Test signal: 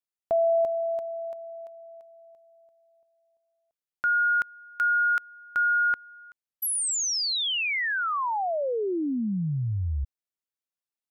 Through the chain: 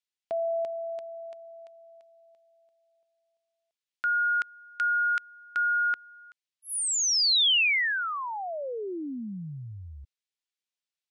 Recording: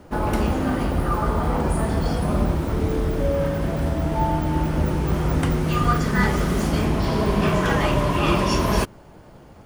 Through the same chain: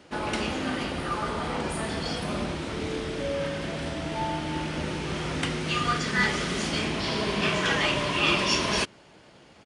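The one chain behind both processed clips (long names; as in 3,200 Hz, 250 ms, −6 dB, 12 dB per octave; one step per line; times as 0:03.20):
meter weighting curve D
downsampling to 22,050 Hz
level −6 dB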